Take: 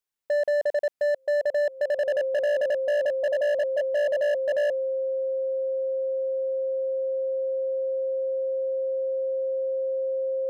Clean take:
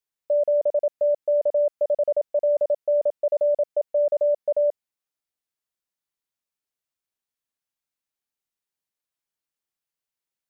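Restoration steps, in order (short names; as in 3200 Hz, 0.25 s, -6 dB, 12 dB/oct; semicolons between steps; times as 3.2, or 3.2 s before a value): clip repair -21 dBFS; notch 530 Hz, Q 30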